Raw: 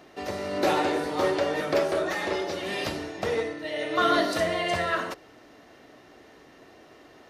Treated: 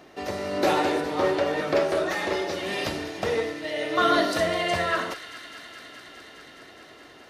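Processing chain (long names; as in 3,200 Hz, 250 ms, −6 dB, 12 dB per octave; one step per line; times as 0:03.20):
0:01.00–0:01.89: high-shelf EQ 5,500 Hz → 9,100 Hz −11 dB
delay with a high-pass on its return 208 ms, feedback 85%, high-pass 1,900 Hz, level −13 dB
level +1.5 dB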